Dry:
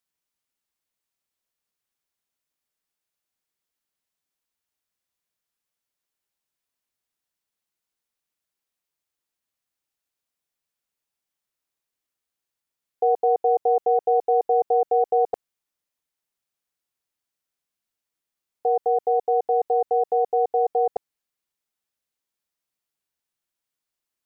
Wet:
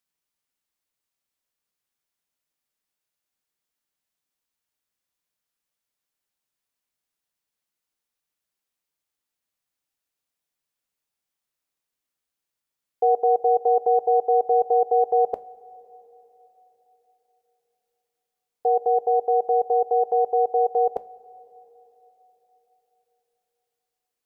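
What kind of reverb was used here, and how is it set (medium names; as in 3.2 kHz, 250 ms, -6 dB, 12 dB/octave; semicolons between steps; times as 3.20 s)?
two-slope reverb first 0.24 s, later 4.2 s, from -20 dB, DRR 13 dB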